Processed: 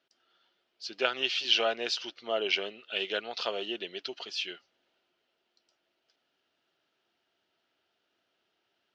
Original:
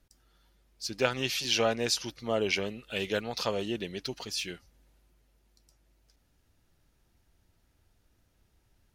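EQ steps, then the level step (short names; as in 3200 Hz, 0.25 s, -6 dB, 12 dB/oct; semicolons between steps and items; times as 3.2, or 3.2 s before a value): speaker cabinet 290–4600 Hz, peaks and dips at 380 Hz +6 dB, 670 Hz +7 dB, 1400 Hz +6 dB, 3000 Hz +8 dB; tilt +2.5 dB/oct; low shelf 420 Hz +4.5 dB; -5.5 dB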